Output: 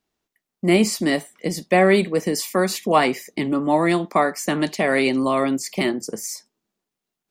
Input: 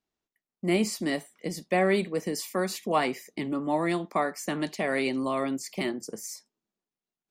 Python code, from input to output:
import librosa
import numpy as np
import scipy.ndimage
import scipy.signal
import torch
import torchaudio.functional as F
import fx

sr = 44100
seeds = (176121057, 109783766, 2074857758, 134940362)

y = x * 10.0 ** (8.5 / 20.0)